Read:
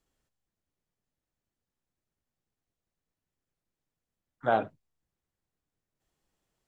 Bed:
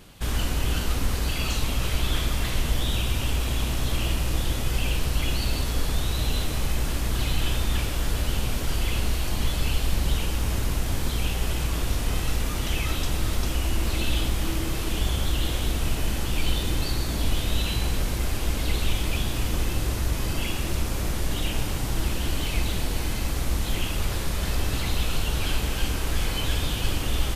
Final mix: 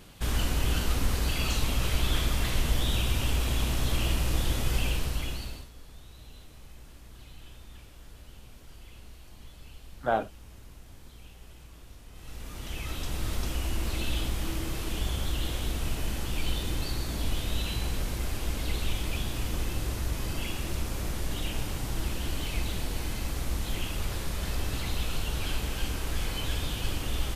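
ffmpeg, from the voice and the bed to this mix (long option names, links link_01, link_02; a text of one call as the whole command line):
ffmpeg -i stem1.wav -i stem2.wav -filter_complex "[0:a]adelay=5600,volume=-1dB[link_01];[1:a]volume=16dB,afade=type=out:start_time=4.76:duration=0.93:silence=0.0841395,afade=type=in:start_time=12.13:duration=1.2:silence=0.125893[link_02];[link_01][link_02]amix=inputs=2:normalize=0" out.wav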